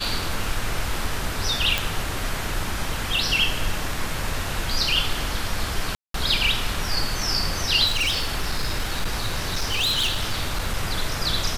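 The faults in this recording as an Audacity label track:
1.780000	1.780000	pop
5.950000	6.140000	gap 0.193 s
7.860000	10.740000	clipped -19 dBFS

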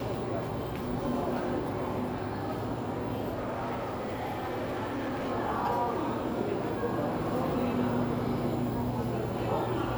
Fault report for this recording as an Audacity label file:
3.340000	5.280000	clipped -30 dBFS

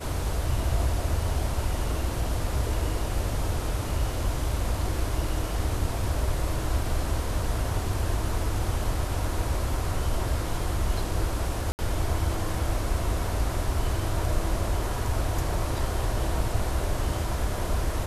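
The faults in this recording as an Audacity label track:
11.720000	11.790000	gap 69 ms

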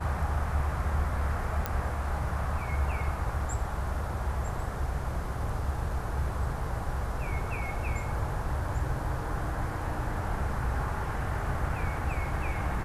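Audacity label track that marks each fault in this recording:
1.660000	1.660000	pop -14 dBFS

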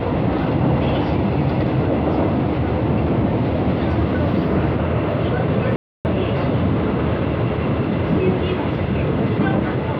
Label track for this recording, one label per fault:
5.760000	6.050000	gap 0.289 s

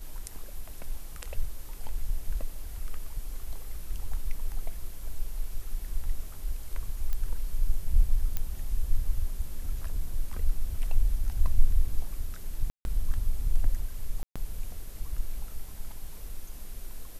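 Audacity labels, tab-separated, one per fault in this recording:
7.130000	7.130000	pop -19 dBFS
8.370000	8.370000	pop -15 dBFS
12.700000	12.850000	gap 0.151 s
14.230000	14.360000	gap 0.126 s

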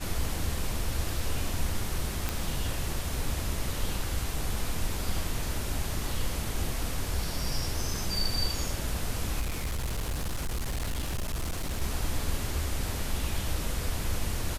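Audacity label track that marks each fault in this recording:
2.290000	2.290000	pop
9.400000	11.820000	clipped -27.5 dBFS

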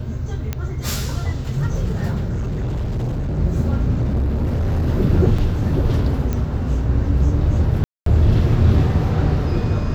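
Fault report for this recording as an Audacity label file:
0.530000	0.530000	pop -10 dBFS
2.290000	3.400000	clipped -19.5 dBFS
3.930000	4.870000	clipped -16 dBFS
5.380000	5.380000	gap 4.4 ms
6.330000	6.330000	pop -11 dBFS
7.840000	8.060000	gap 0.223 s

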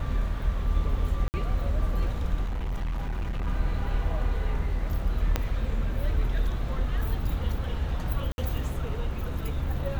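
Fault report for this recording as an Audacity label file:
1.280000	1.340000	gap 59 ms
2.450000	3.470000	clipped -26.5 dBFS
5.360000	5.360000	pop -10 dBFS
8.320000	8.380000	gap 61 ms

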